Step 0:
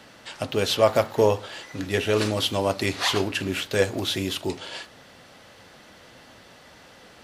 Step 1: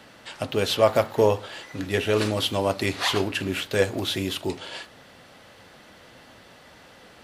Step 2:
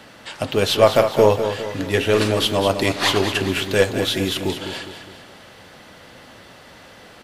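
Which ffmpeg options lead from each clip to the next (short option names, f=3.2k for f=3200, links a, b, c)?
-af "equalizer=f=5.9k:w=1.5:g=-3"
-af "aeval=exprs='0.531*(cos(1*acos(clip(val(0)/0.531,-1,1)))-cos(1*PI/2))+0.00944*(cos(8*acos(clip(val(0)/0.531,-1,1)))-cos(8*PI/2))':c=same,aecho=1:1:205|410|615|820|1025:0.355|0.167|0.0784|0.0368|0.0173,volume=5dB"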